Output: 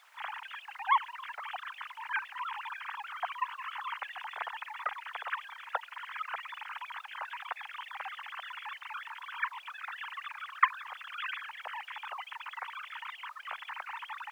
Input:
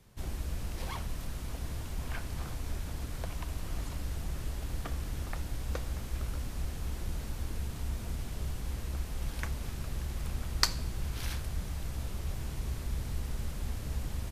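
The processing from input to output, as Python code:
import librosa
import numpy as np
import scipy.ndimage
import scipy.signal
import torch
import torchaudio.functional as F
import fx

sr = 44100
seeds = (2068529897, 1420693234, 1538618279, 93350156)

y = fx.sine_speech(x, sr)
y = fx.rider(y, sr, range_db=3, speed_s=0.5)
y = fx.dmg_noise_colour(y, sr, seeds[0], colour='pink', level_db=-54.0)
y = scipy.signal.sosfilt(scipy.signal.cheby2(4, 50, 320.0, 'highpass', fs=sr, output='sos'), y)
y = fx.high_shelf(y, sr, hz=2300.0, db=-11.5)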